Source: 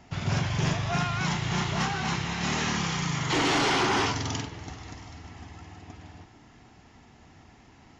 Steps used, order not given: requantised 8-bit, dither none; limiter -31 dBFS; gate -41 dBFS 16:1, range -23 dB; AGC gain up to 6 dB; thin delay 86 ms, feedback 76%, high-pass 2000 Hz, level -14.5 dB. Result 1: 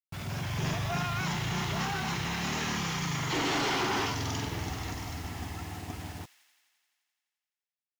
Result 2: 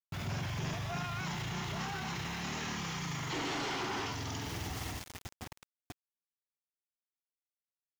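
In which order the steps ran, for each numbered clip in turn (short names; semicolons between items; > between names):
limiter > AGC > gate > requantised > thin delay; gate > thin delay > requantised > AGC > limiter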